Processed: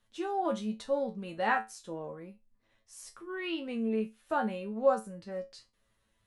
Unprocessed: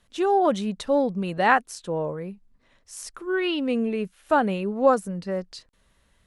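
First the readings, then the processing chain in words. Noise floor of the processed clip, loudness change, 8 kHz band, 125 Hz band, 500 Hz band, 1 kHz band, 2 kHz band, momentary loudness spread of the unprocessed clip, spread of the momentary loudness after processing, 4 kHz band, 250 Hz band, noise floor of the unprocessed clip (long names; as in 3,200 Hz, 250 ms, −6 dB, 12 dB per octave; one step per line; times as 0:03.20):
−75 dBFS, −9.0 dB, −10.0 dB, −12.0 dB, −9.0 dB, −9.5 dB, −9.5 dB, 15 LU, 18 LU, −10.0 dB, −9.5 dB, −65 dBFS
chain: tuned comb filter 110 Hz, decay 0.22 s, harmonics all, mix 90%
level −2 dB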